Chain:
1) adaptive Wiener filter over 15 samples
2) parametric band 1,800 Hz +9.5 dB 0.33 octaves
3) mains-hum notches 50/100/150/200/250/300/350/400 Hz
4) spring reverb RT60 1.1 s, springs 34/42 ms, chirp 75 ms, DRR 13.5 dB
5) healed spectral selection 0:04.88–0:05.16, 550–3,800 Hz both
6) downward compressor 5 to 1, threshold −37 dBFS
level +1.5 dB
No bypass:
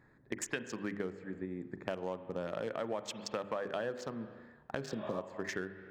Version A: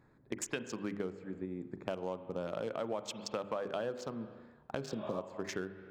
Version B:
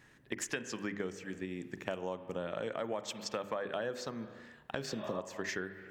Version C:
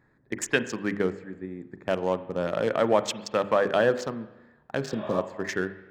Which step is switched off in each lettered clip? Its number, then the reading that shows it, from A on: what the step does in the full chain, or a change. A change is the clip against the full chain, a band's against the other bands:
2, 2 kHz band −4.0 dB
1, 4 kHz band +3.0 dB
6, average gain reduction 8.5 dB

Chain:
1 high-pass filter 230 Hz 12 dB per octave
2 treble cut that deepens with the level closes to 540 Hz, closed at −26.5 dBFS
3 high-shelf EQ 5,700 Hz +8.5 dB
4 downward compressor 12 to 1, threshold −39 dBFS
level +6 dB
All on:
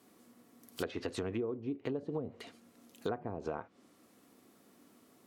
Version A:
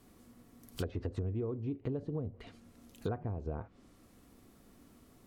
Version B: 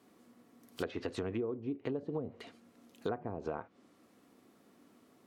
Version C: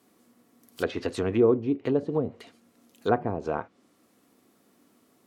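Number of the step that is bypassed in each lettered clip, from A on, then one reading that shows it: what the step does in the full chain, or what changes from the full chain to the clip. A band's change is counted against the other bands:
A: 1, 125 Hz band +13.0 dB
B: 3, 4 kHz band −2.5 dB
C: 4, average gain reduction 9.5 dB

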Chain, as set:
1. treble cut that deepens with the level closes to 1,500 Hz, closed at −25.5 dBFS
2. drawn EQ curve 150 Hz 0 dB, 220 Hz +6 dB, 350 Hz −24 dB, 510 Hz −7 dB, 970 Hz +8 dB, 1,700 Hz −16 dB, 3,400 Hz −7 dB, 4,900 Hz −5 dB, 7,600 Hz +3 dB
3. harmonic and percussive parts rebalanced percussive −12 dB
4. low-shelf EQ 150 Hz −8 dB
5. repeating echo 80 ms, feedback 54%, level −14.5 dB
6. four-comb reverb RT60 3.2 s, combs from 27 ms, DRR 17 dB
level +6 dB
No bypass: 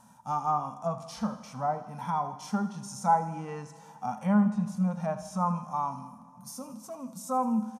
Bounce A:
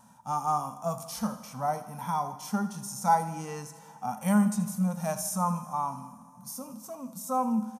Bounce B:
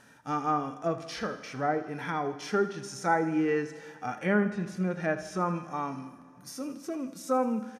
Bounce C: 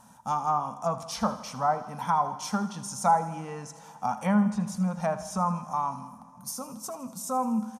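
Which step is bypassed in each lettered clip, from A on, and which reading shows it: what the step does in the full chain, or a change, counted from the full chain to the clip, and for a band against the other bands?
1, 8 kHz band +7.5 dB
2, 2 kHz band +12.0 dB
3, 4 kHz band +4.5 dB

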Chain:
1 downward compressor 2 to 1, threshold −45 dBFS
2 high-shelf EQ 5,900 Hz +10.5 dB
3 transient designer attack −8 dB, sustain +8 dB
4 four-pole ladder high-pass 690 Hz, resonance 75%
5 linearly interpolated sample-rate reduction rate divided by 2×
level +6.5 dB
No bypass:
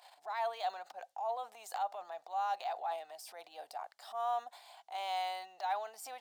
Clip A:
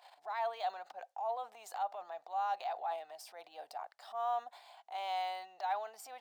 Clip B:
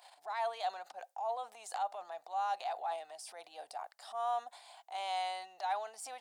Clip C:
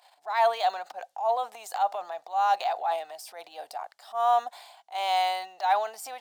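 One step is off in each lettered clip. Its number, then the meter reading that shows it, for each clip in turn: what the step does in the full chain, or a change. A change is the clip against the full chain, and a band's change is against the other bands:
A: 2, 8 kHz band −3.0 dB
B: 5, 8 kHz band +3.0 dB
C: 1, average gain reduction 8.0 dB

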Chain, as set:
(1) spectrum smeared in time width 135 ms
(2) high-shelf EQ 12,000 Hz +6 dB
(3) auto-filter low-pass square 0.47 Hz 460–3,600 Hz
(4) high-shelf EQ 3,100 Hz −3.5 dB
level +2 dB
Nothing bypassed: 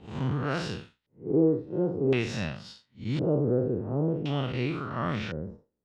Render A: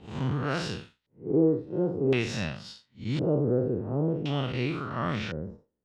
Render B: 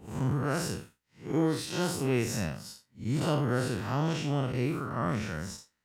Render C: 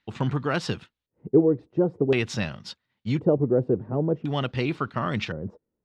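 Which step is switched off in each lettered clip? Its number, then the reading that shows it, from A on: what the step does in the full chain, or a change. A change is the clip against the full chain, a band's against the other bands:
4, 4 kHz band +2.0 dB
3, 500 Hz band −4.5 dB
1, 125 Hz band −2.0 dB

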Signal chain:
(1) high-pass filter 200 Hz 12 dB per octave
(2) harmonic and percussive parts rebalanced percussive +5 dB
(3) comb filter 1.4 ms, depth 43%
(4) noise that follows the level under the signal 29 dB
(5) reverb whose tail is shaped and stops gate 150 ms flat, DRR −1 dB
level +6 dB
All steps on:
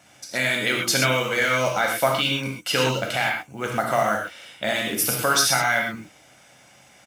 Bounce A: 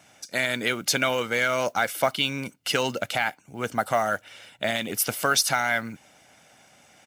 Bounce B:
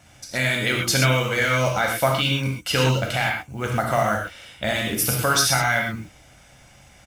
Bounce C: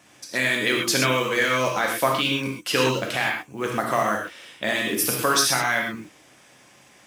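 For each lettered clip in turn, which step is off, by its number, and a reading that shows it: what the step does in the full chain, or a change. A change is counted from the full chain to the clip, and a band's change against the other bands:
5, 125 Hz band −3.5 dB
1, 125 Hz band +8.0 dB
3, 250 Hz band +3.0 dB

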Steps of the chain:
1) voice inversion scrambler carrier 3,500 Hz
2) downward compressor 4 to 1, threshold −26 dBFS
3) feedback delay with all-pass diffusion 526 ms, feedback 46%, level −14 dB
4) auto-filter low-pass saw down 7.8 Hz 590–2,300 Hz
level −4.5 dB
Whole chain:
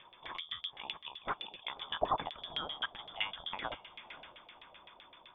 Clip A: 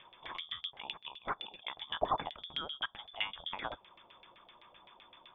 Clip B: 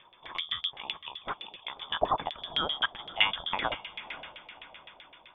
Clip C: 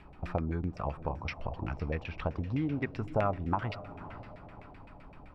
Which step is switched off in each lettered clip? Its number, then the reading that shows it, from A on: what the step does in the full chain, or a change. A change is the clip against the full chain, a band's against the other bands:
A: 3, change in momentary loudness spread +3 LU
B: 2, change in momentary loudness spread +2 LU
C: 1, 4 kHz band −23.0 dB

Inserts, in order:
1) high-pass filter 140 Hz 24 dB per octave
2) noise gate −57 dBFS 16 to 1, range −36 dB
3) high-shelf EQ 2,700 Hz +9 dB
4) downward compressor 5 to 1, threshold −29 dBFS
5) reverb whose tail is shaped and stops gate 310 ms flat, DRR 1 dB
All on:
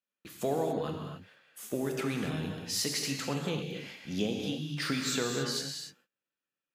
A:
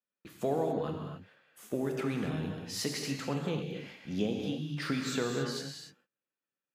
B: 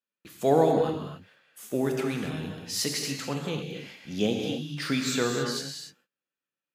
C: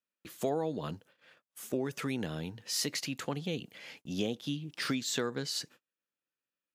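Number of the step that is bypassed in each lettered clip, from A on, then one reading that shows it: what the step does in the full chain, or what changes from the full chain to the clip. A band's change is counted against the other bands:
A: 3, 8 kHz band −6.0 dB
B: 4, average gain reduction 2.0 dB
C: 5, change in momentary loudness spread +4 LU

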